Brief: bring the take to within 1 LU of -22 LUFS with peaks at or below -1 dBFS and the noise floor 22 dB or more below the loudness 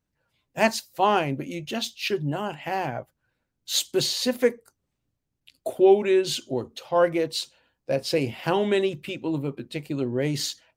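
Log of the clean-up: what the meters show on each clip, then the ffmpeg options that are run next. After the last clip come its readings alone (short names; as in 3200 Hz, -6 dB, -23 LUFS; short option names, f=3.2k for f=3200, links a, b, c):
loudness -25.0 LUFS; peak -6.0 dBFS; loudness target -22.0 LUFS
-> -af "volume=3dB"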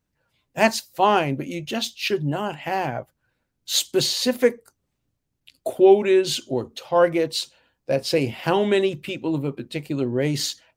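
loudness -22.5 LUFS; peak -3.0 dBFS; noise floor -77 dBFS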